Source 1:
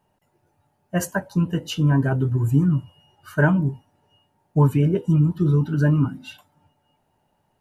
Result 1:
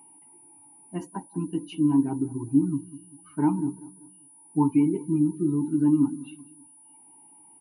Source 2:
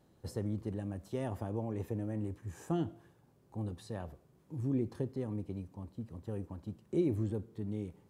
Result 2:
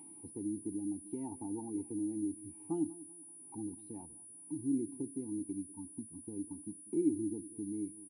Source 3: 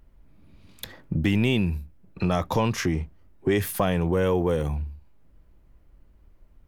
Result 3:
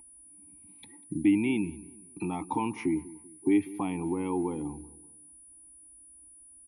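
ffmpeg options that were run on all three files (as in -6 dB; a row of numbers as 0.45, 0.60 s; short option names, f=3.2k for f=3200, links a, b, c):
-filter_complex "[0:a]afftdn=nr=14:nf=-39,asplit=2[a][b];[b]acompressor=mode=upward:threshold=-27dB:ratio=2.5,volume=1dB[c];[a][c]amix=inputs=2:normalize=0,asplit=3[d][e][f];[d]bandpass=f=300:t=q:w=8,volume=0dB[g];[e]bandpass=f=870:t=q:w=8,volume=-6dB[h];[f]bandpass=f=2.24k:t=q:w=8,volume=-9dB[i];[g][h][i]amix=inputs=3:normalize=0,aeval=exprs='val(0)+0.00282*sin(2*PI*9800*n/s)':c=same,asplit=2[j][k];[k]adelay=194,lowpass=f=1.7k:p=1,volume=-18.5dB,asplit=2[l][m];[m]adelay=194,lowpass=f=1.7k:p=1,volume=0.42,asplit=2[n][o];[o]adelay=194,lowpass=f=1.7k:p=1,volume=0.42[p];[j][l][n][p]amix=inputs=4:normalize=0"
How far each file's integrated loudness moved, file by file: -4.5, -1.0, -5.0 LU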